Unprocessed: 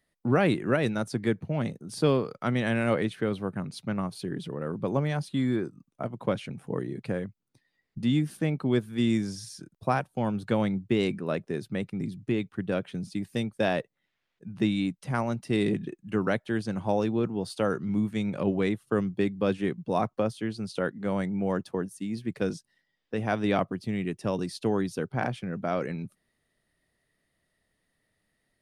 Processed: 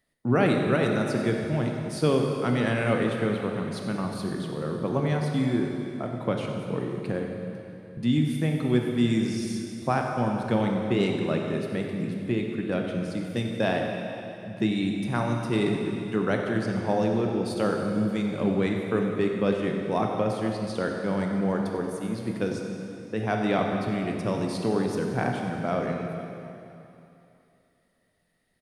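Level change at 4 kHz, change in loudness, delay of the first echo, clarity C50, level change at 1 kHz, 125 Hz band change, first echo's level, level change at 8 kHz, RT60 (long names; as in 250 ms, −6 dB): +2.5 dB, +2.0 dB, 93 ms, 2.0 dB, +2.5 dB, +2.5 dB, −12.5 dB, +2.5 dB, 2.9 s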